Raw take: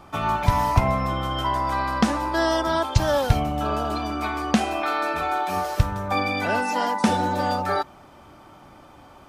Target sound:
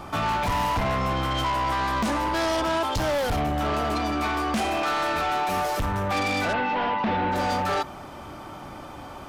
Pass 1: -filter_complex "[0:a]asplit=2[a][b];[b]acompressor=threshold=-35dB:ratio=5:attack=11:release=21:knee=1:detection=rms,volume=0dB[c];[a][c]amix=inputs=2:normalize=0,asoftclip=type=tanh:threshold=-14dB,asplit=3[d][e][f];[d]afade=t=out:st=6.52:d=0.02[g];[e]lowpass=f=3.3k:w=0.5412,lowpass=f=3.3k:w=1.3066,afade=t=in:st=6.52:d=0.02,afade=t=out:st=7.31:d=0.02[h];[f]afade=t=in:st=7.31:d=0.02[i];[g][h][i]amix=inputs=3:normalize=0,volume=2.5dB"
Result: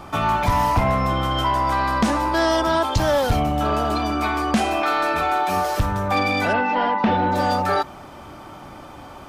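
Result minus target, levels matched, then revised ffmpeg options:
soft clip: distortion -7 dB
-filter_complex "[0:a]asplit=2[a][b];[b]acompressor=threshold=-35dB:ratio=5:attack=11:release=21:knee=1:detection=rms,volume=0dB[c];[a][c]amix=inputs=2:normalize=0,asoftclip=type=tanh:threshold=-24.5dB,asplit=3[d][e][f];[d]afade=t=out:st=6.52:d=0.02[g];[e]lowpass=f=3.3k:w=0.5412,lowpass=f=3.3k:w=1.3066,afade=t=in:st=6.52:d=0.02,afade=t=out:st=7.31:d=0.02[h];[f]afade=t=in:st=7.31:d=0.02[i];[g][h][i]amix=inputs=3:normalize=0,volume=2.5dB"

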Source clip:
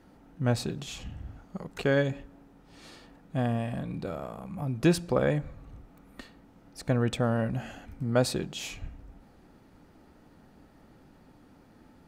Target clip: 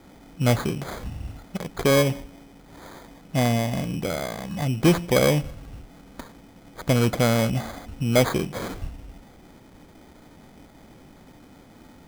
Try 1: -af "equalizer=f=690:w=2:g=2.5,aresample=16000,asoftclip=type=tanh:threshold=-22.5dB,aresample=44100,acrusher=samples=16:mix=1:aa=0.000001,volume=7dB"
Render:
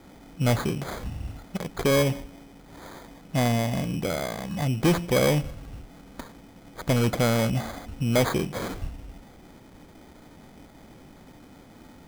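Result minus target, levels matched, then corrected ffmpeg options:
soft clip: distortion +8 dB
-af "equalizer=f=690:w=2:g=2.5,aresample=16000,asoftclip=type=tanh:threshold=-16dB,aresample=44100,acrusher=samples=16:mix=1:aa=0.000001,volume=7dB"

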